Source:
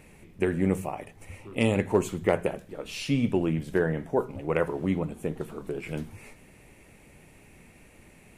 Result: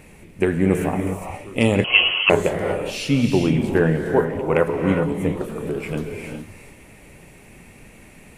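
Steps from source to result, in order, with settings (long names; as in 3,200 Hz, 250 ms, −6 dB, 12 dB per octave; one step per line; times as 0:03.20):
reverb whose tail is shaped and stops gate 440 ms rising, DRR 3.5 dB
0:01.84–0:02.30: voice inversion scrambler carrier 3,100 Hz
level +6.5 dB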